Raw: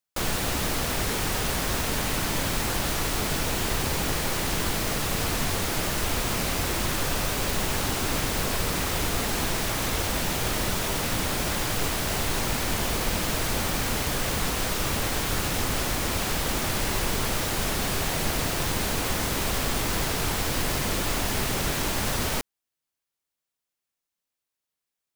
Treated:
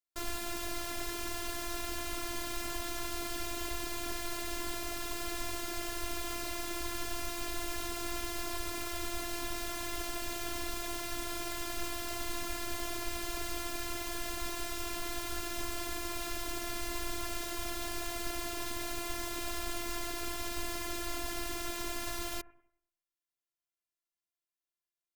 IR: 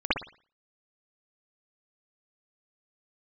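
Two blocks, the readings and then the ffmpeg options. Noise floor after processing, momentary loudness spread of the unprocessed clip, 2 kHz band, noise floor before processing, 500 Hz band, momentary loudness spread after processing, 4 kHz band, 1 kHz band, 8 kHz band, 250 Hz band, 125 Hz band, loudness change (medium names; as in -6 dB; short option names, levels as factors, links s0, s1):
under -85 dBFS, 0 LU, -11.0 dB, under -85 dBFS, -11.0 dB, 0 LU, -11.0 dB, -10.5 dB, -11.0 dB, -11.0 dB, -20.0 dB, -11.5 dB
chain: -filter_complex "[0:a]asplit=2[s0][s1];[s1]lowpass=f=7600:w=0.5412,lowpass=f=7600:w=1.3066[s2];[1:a]atrim=start_sample=2205,asetrate=26901,aresample=44100[s3];[s2][s3]afir=irnorm=-1:irlink=0,volume=0.0158[s4];[s0][s4]amix=inputs=2:normalize=0,afftfilt=real='hypot(re,im)*cos(PI*b)':imag='0':win_size=512:overlap=0.75,volume=0.422"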